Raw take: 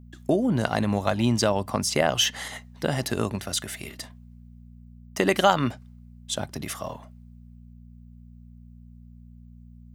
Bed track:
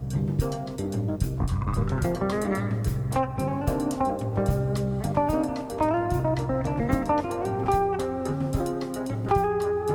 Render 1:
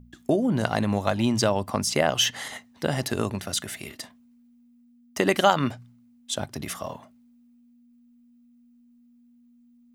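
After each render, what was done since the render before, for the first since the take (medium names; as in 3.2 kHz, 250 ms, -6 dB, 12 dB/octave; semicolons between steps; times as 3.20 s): de-hum 60 Hz, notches 3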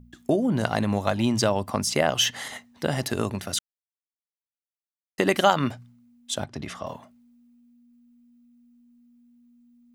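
3.59–5.18 s: mute; 6.44–6.87 s: distance through air 94 m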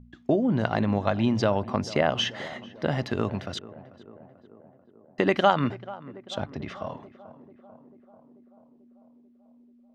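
distance through air 210 m; tape echo 440 ms, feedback 74%, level -16 dB, low-pass 1.3 kHz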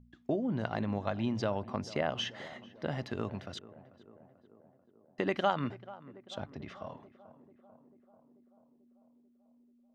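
trim -9 dB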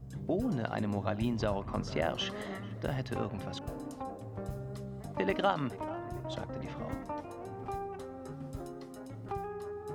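add bed track -15.5 dB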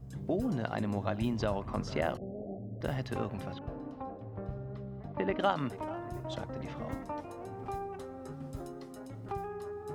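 2.17–2.81 s: steep low-pass 750 Hz 96 dB/octave; 3.53–5.40 s: distance through air 320 m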